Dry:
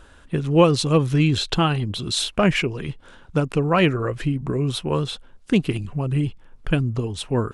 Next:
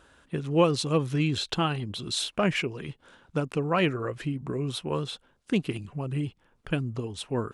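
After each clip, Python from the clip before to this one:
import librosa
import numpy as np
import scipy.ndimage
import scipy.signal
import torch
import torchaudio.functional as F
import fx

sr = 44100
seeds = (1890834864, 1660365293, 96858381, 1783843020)

y = fx.highpass(x, sr, hz=130.0, slope=6)
y = F.gain(torch.from_numpy(y), -6.0).numpy()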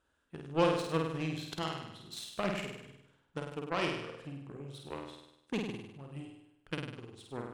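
y = fx.cheby_harmonics(x, sr, harmonics=(7,), levels_db=(-19,), full_scale_db=-8.0)
y = fx.room_flutter(y, sr, wall_m=8.6, rt60_s=0.84)
y = F.gain(torch.from_numpy(y), -7.0).numpy()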